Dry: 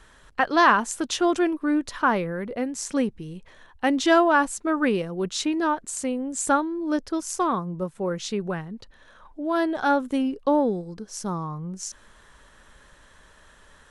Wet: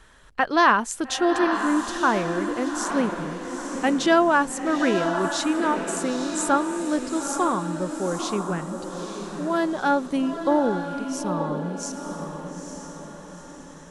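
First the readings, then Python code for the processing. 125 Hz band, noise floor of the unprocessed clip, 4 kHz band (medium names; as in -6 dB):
+1.5 dB, -54 dBFS, +1.0 dB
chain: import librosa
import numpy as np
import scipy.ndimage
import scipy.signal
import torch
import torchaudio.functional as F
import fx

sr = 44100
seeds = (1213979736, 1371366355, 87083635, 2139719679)

y = fx.echo_diffused(x, sr, ms=889, feedback_pct=47, wet_db=-6.5)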